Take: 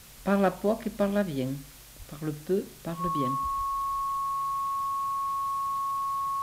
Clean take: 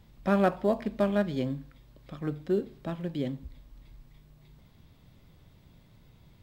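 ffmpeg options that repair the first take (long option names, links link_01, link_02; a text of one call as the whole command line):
ffmpeg -i in.wav -filter_complex "[0:a]adeclick=threshold=4,bandreject=frequency=1100:width=30,asplit=3[link_01][link_02][link_03];[link_01]afade=type=out:start_time=1.98:duration=0.02[link_04];[link_02]highpass=frequency=140:width=0.5412,highpass=frequency=140:width=1.3066,afade=type=in:start_time=1.98:duration=0.02,afade=type=out:start_time=2.1:duration=0.02[link_05];[link_03]afade=type=in:start_time=2.1:duration=0.02[link_06];[link_04][link_05][link_06]amix=inputs=3:normalize=0,asplit=3[link_07][link_08][link_09];[link_07]afade=type=out:start_time=3.03:duration=0.02[link_10];[link_08]highpass=frequency=140:width=0.5412,highpass=frequency=140:width=1.3066,afade=type=in:start_time=3.03:duration=0.02,afade=type=out:start_time=3.15:duration=0.02[link_11];[link_09]afade=type=in:start_time=3.15:duration=0.02[link_12];[link_10][link_11][link_12]amix=inputs=3:normalize=0,asplit=3[link_13][link_14][link_15];[link_13]afade=type=out:start_time=3.57:duration=0.02[link_16];[link_14]highpass=frequency=140:width=0.5412,highpass=frequency=140:width=1.3066,afade=type=in:start_time=3.57:duration=0.02,afade=type=out:start_time=3.69:duration=0.02[link_17];[link_15]afade=type=in:start_time=3.69:duration=0.02[link_18];[link_16][link_17][link_18]amix=inputs=3:normalize=0,afwtdn=0.0032" out.wav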